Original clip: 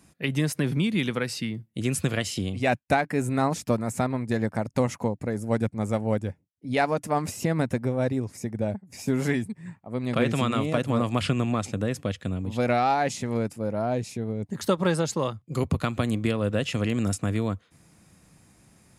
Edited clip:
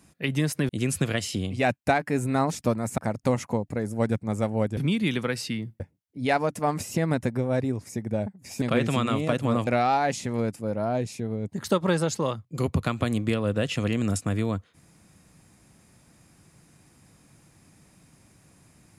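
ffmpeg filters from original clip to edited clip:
-filter_complex "[0:a]asplit=7[s0][s1][s2][s3][s4][s5][s6];[s0]atrim=end=0.692[s7];[s1]atrim=start=1.718:end=4.012[s8];[s2]atrim=start=4.488:end=6.282[s9];[s3]atrim=start=0.688:end=1.722[s10];[s4]atrim=start=6.278:end=9.102[s11];[s5]atrim=start=10.068:end=11.122[s12];[s6]atrim=start=12.638[s13];[s7][s8]acrossfade=d=0.004:c1=hsin:c2=hsin[s14];[s14][s9]acrossfade=d=0.004:c1=hsin:c2=hsin[s15];[s15][s10]acrossfade=d=0.004:c1=hsin:c2=hsin[s16];[s16][s11]acrossfade=d=0.004:c1=hsin:c2=hsin[s17];[s17][s12]acrossfade=d=0.004:c1=hsin:c2=hsin[s18];[s18][s13]acrossfade=d=0.004:c1=hsin:c2=hsin"

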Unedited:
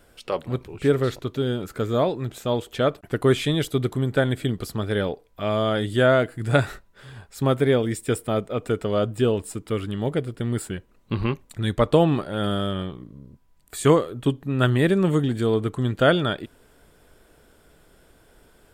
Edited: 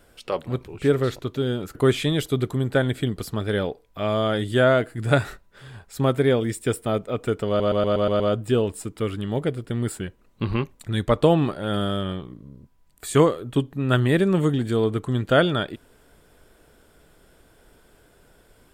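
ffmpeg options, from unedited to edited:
-filter_complex "[0:a]asplit=8[s0][s1][s2][s3][s4][s5][s6][s7];[s0]atrim=end=1.752[s8];[s1]atrim=start=3.168:end=9.022[s9];[s2]atrim=start=8.898:end=9.022[s10];[s3]atrim=start=8.898:end=9.022[s11];[s4]atrim=start=8.898:end=9.022[s12];[s5]atrim=start=8.898:end=9.022[s13];[s6]atrim=start=8.898:end=9.022[s14];[s7]atrim=start=8.898[s15];[s8][s9]acrossfade=d=0.004:c1=hsin:c2=hsin[s16];[s16][s10]acrossfade=d=0.004:c1=hsin:c2=hsin[s17];[s17][s11]acrossfade=d=0.004:c1=hsin:c2=hsin[s18];[s18][s12]acrossfade=d=0.004:c1=hsin:c2=hsin[s19];[s19][s13]acrossfade=d=0.004:c1=hsin:c2=hsin[s20];[s20][s14]acrossfade=d=0.004:c1=hsin:c2=hsin[s21];[s21][s15]acrossfade=d=0.004:c1=hsin:c2=hsin"

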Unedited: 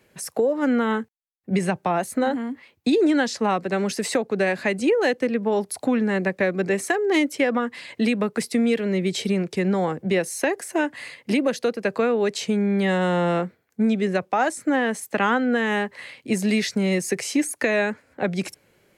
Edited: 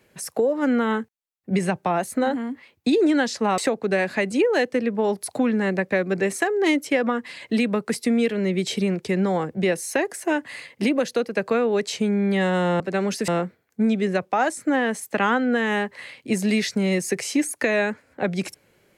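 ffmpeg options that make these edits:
-filter_complex "[0:a]asplit=4[s0][s1][s2][s3];[s0]atrim=end=3.582[s4];[s1]atrim=start=4.058:end=13.282[s5];[s2]atrim=start=3.578:end=4.062[s6];[s3]atrim=start=13.278[s7];[s4][s5]acrossfade=d=0.004:c1=hsin:c2=hsin[s8];[s8][s6]acrossfade=d=0.004:c1=hsin:c2=hsin[s9];[s9][s7]acrossfade=d=0.004:c1=hsin:c2=hsin"

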